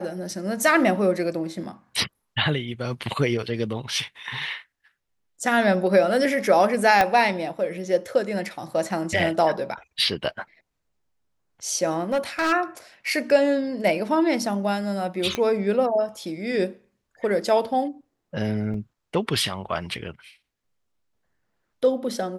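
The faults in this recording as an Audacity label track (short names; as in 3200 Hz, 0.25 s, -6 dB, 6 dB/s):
7.010000	7.010000	pop -6 dBFS
12.120000	12.530000	clipped -18.5 dBFS
15.350000	15.350000	pop -11 dBFS
18.740000	18.740000	gap 2.8 ms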